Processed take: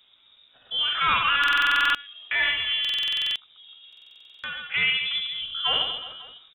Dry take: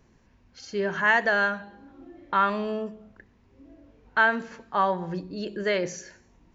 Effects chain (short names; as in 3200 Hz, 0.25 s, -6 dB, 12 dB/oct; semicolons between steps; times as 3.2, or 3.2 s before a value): wavefolder -16 dBFS; reverse bouncing-ball echo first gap 60 ms, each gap 1.3×, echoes 5; pitch shift +6 st; inverted band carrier 3700 Hz; stuck buffer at 1.39/2.8/3.88, samples 2048, times 11